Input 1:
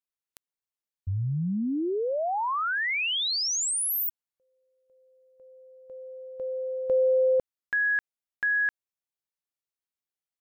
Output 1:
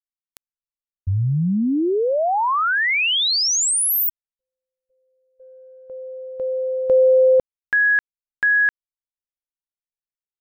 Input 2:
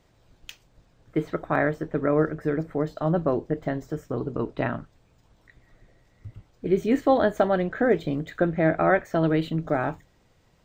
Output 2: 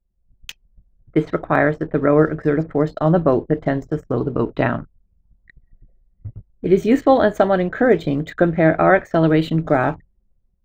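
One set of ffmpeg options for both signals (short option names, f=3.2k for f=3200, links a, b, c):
-af "anlmdn=0.0158,dynaudnorm=f=150:g=5:m=7.5dB,volume=1dB"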